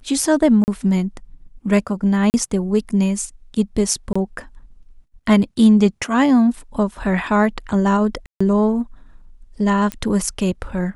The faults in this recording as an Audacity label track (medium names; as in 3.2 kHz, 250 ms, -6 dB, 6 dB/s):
0.640000	0.680000	dropout 39 ms
2.300000	2.340000	dropout 39 ms
4.130000	4.160000	dropout 25 ms
8.260000	8.400000	dropout 145 ms
9.920000	9.920000	pop -10 dBFS